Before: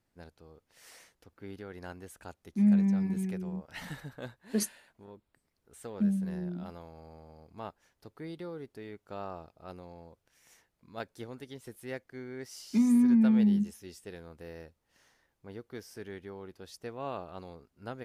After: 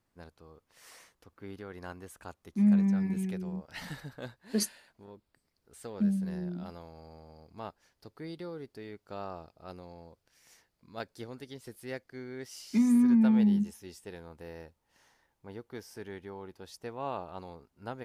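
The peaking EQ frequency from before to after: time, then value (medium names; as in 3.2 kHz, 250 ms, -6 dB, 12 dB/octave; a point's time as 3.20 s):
peaking EQ +6.5 dB 0.35 oct
2.83 s 1.1 kHz
3.43 s 4.7 kHz
12.24 s 4.7 kHz
13.24 s 890 Hz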